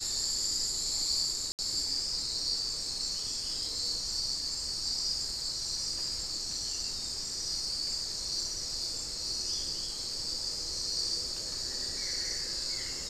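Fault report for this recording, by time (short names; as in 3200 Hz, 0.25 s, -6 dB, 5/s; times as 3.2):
1.52–1.59 gap 68 ms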